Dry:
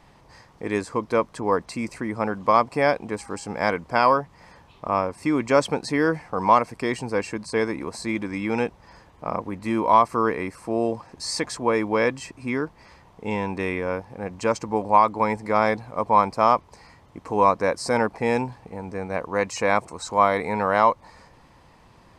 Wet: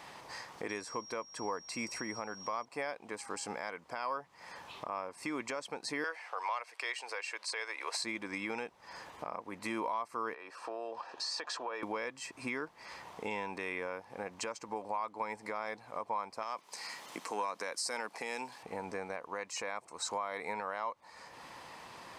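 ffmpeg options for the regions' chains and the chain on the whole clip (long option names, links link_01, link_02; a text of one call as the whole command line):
ffmpeg -i in.wav -filter_complex "[0:a]asettb=1/sr,asplit=3[link_01][link_02][link_03];[link_01]atrim=end=0.694[link_04];[link_02]atrim=start=0.69:end=2.65,asetpts=PTS-STARTPTS,afade=type=in:duration=0.004:curve=qsin,afade=type=out:start_time=1.956:duration=0.004:curve=qsin,aeval=exprs='val(0)+0.00794*sin(2*PI*5600*n/s)':channel_layout=same,lowshelf=frequency=110:gain=7.5[link_05];[link_03]atrim=start=2.646[link_06];[link_04][link_05]acrossfade=duration=0.004:curve1=hsin:curve2=qsin[link_07];[link_07][link_06]acrossfade=duration=0.004:curve1=qsin:curve2=hsin,asettb=1/sr,asplit=3[link_08][link_09][link_10];[link_08]atrim=end=6.044[link_11];[link_09]atrim=start=6.04:end=8.04,asetpts=PTS-STARTPTS,afade=type=in:duration=0.004:curve=qsin,afade=type=out:start_time=1.996:duration=0.004:curve=qsin,highpass=frequency=460:width=0.5412,highpass=frequency=460:width=1.3066,equalizer=frequency=2800:width_type=o:width=2:gain=9.5[link_12];[link_10]atrim=start=8.036[link_13];[link_11][link_12]acrossfade=duration=0.004:curve1=hsin:curve2=qsin[link_14];[link_14][link_13]acrossfade=duration=0.004:curve1=qsin:curve2=hsin,asettb=1/sr,asplit=3[link_15][link_16][link_17];[link_15]atrim=end=10.344[link_18];[link_16]atrim=start=10.34:end=11.83,asetpts=PTS-STARTPTS,afade=type=in:duration=0.004:curve=qsin,afade=type=out:start_time=1.486:duration=0.004:curve=qsin,acrossover=split=380 5100:gain=0.126 1 0.112[link_19][link_20][link_21];[link_19][link_20][link_21]amix=inputs=3:normalize=0,acompressor=threshold=-34dB:ratio=4:attack=3.2:release=140:knee=1:detection=peak,asuperstop=centerf=2100:order=4:qfactor=6[link_22];[link_17]atrim=start=11.826[link_23];[link_18][link_22]acrossfade=duration=0.004:curve1=hsin:curve2=qsin[link_24];[link_24][link_23]acrossfade=duration=0.004:curve1=qsin:curve2=hsin,asettb=1/sr,asplit=3[link_25][link_26][link_27];[link_25]atrim=end=16.424[link_28];[link_26]atrim=start=16.42:end=18.63,asetpts=PTS-STARTPTS,afade=type=in:duration=0.004:curve=qsin,afade=type=out:start_time=2.206:duration=0.004:curve=qsin,acompressor=threshold=-19dB:ratio=6:attack=3.2:release=140:knee=1:detection=peak,highpass=frequency=160:width=0.5412,highpass=frequency=160:width=1.3066,highshelf=frequency=2300:gain=11.5[link_29];[link_27]atrim=start=18.626[link_30];[link_28][link_29]acrossfade=duration=0.004:curve1=hsin:curve2=qsin[link_31];[link_31][link_30]acrossfade=duration=0.004:curve1=qsin:curve2=hsin,highpass=frequency=810:poles=1,acompressor=threshold=-50dB:ratio=2,alimiter=level_in=9.5dB:limit=-24dB:level=0:latency=1:release=339,volume=-9.5dB,volume=8dB" out.wav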